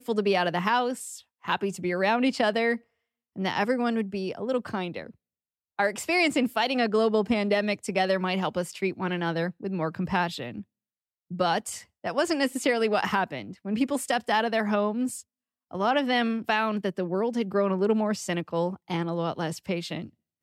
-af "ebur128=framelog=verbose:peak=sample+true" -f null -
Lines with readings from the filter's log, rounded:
Integrated loudness:
  I:         -27.0 LUFS
  Threshold: -37.4 LUFS
Loudness range:
  LRA:         4.3 LU
  Threshold: -47.5 LUFS
  LRA low:   -30.0 LUFS
  LRA high:  -25.7 LUFS
Sample peak:
  Peak:      -12.2 dBFS
True peak:
  Peak:      -12.2 dBFS